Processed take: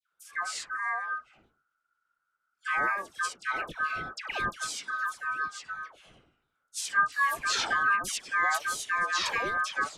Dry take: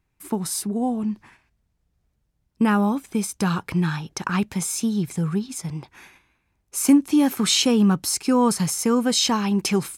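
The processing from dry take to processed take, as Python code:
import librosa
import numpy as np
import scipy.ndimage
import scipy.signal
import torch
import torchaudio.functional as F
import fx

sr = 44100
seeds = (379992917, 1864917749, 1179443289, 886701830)

y = fx.pitch_ramps(x, sr, semitones=-9.0, every_ms=712)
y = y * np.sin(2.0 * np.pi * 1400.0 * np.arange(len(y)) / sr)
y = fx.dispersion(y, sr, late='lows', ms=132.0, hz=1200.0)
y = y * librosa.db_to_amplitude(-5.0)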